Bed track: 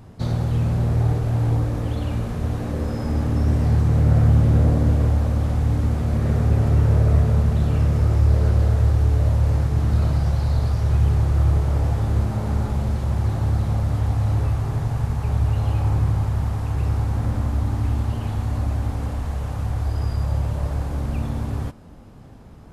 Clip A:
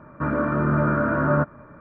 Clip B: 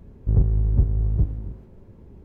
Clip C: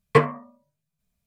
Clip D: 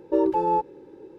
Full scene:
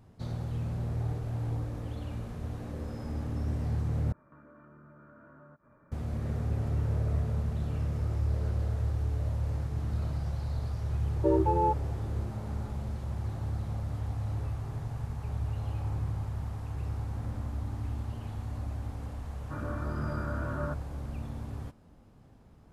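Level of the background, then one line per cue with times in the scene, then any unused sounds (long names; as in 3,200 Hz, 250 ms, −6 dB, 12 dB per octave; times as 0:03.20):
bed track −13 dB
0:04.12: overwrite with A −16 dB + downward compressor 5 to 1, threshold −38 dBFS
0:11.12: mix in D −4 dB + Bessel low-pass filter 2,000 Hz
0:19.30: mix in A −15.5 dB
not used: B, C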